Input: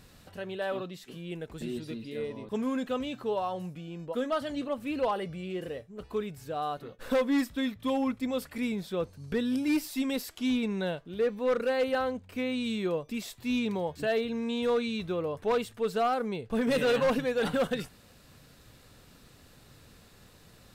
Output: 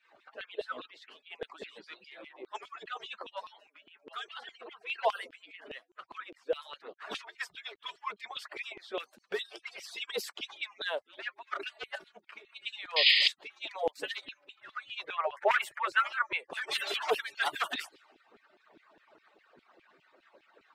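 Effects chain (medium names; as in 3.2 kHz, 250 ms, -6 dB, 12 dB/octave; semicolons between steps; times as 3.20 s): harmonic-percussive separation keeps percussive; level-controlled noise filter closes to 1.7 kHz, open at -34.5 dBFS; 12.96–13.28 s: painted sound noise 1.8–5.1 kHz -29 dBFS; dynamic bell 3.2 kHz, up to +4 dB, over -55 dBFS, Q 3.7; LFO high-pass saw down 4.9 Hz 320–3000 Hz; 15.04–16.51 s: ten-band graphic EQ 125 Hz +9 dB, 250 Hz -11 dB, 500 Hz +8 dB, 1 kHz +5 dB, 2 kHz +11 dB, 4 kHz -8 dB; trim +2 dB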